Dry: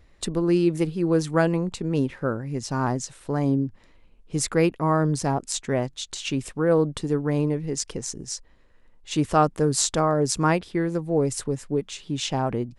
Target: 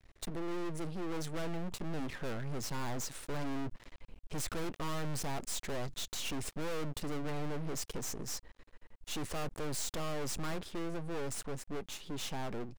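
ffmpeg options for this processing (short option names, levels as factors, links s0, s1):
-af "aeval=exprs='max(val(0),0)':c=same,dynaudnorm=f=200:g=21:m=3.16,aeval=exprs='(tanh(22.4*val(0)+0.75)-tanh(0.75))/22.4':c=same,volume=1.68"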